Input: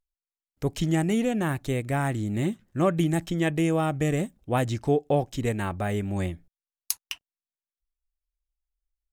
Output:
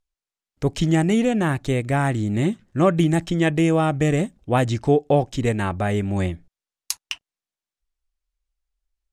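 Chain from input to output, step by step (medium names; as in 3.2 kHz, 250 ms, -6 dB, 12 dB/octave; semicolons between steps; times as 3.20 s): low-pass 8.4 kHz 12 dB/octave; trim +5.5 dB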